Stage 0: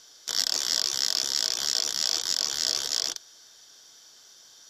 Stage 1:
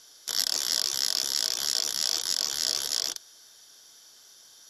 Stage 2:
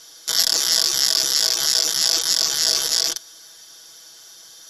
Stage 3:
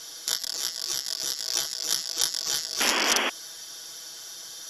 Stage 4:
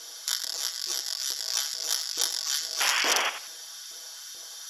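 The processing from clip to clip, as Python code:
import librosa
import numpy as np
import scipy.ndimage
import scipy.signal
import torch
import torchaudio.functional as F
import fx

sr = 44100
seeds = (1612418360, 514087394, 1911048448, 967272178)

y1 = fx.peak_eq(x, sr, hz=11000.0, db=13.5, octaves=0.28)
y1 = F.gain(torch.from_numpy(y1), -1.5).numpy()
y2 = y1 + 0.75 * np.pad(y1, (int(6.1 * sr / 1000.0), 0))[:len(y1)]
y2 = F.gain(torch.from_numpy(y2), 7.0).numpy()
y3 = fx.over_compress(y2, sr, threshold_db=-25.0, ratio=-0.5)
y3 = fx.spec_paint(y3, sr, seeds[0], shape='noise', start_s=2.8, length_s=0.5, low_hz=210.0, high_hz=3400.0, level_db=-23.0)
y3 = F.gain(torch.from_numpy(y3), -3.0).numpy()
y4 = np.clip(10.0 ** (11.0 / 20.0) * y3, -1.0, 1.0) / 10.0 ** (11.0 / 20.0)
y4 = fx.filter_lfo_highpass(y4, sr, shape='saw_up', hz=2.3, low_hz=330.0, high_hz=1800.0, q=1.1)
y4 = fx.echo_feedback(y4, sr, ms=88, feedback_pct=26, wet_db=-11)
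y4 = F.gain(torch.from_numpy(y4), -1.5).numpy()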